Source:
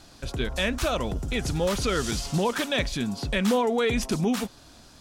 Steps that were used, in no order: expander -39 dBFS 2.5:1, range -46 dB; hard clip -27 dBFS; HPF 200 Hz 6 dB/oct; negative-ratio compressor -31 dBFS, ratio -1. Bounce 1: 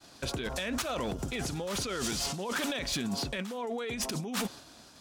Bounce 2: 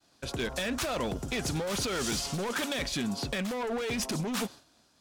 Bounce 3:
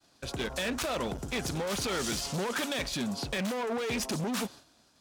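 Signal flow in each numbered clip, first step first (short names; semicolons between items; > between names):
negative-ratio compressor > expander > HPF > hard clip; HPF > hard clip > negative-ratio compressor > expander; expander > hard clip > HPF > negative-ratio compressor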